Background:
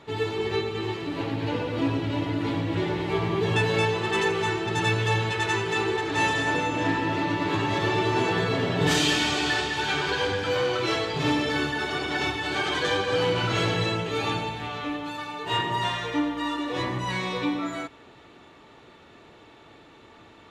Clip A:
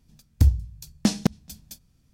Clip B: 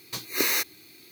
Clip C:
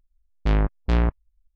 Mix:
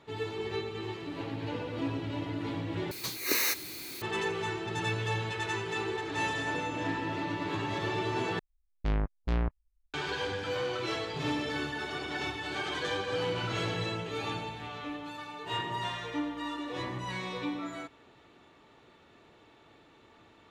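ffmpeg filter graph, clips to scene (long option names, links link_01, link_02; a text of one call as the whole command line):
ffmpeg -i bed.wav -i cue0.wav -i cue1.wav -i cue2.wav -filter_complex "[0:a]volume=-8dB[link_01];[2:a]aeval=exprs='val(0)+0.5*0.0237*sgn(val(0))':channel_layout=same[link_02];[link_01]asplit=3[link_03][link_04][link_05];[link_03]atrim=end=2.914[link_06];[link_02]atrim=end=1.11,asetpts=PTS-STARTPTS,volume=-5dB[link_07];[link_04]atrim=start=4.016:end=8.394[link_08];[3:a]atrim=end=1.55,asetpts=PTS-STARTPTS,volume=-9dB[link_09];[link_05]atrim=start=9.936[link_10];[link_06][link_07]acrossfade=duration=0.004:curve1=hsin:curve2=hsin[link_11];[link_11][link_08]acrossfade=duration=0.004:curve1=hsin:curve2=hsin[link_12];[link_12][link_09]acrossfade=duration=0.004:curve1=hsin:curve2=hsin[link_13];[link_13][link_10]acrossfade=duration=0.004:curve1=hsin:curve2=hsin" out.wav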